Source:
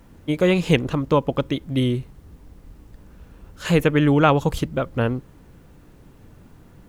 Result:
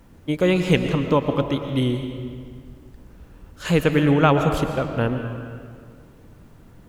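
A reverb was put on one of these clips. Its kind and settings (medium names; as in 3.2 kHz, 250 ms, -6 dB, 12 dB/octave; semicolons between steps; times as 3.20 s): algorithmic reverb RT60 2.1 s, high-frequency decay 0.7×, pre-delay 80 ms, DRR 6 dB; trim -1 dB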